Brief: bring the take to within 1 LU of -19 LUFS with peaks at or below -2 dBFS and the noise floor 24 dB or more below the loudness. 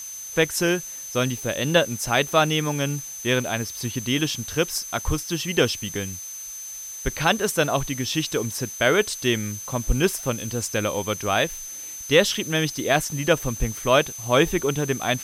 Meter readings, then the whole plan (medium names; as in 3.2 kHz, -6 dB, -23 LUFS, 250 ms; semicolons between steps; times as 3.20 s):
steady tone 6.2 kHz; tone level -34 dBFS; noise floor -36 dBFS; noise floor target -48 dBFS; loudness -23.5 LUFS; peak level -5.0 dBFS; loudness target -19.0 LUFS
-> band-stop 6.2 kHz, Q 30; noise print and reduce 12 dB; trim +4.5 dB; peak limiter -2 dBFS